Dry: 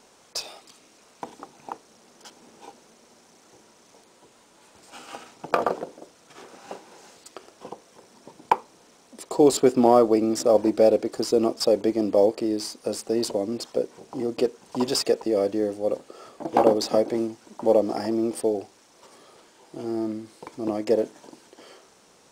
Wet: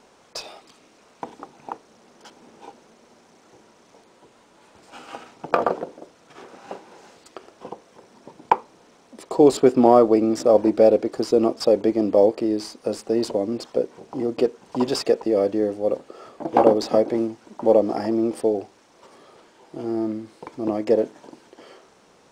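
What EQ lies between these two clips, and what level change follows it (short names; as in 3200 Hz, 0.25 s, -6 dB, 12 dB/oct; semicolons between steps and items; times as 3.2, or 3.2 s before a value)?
high shelf 4900 Hz -11.5 dB; +3.0 dB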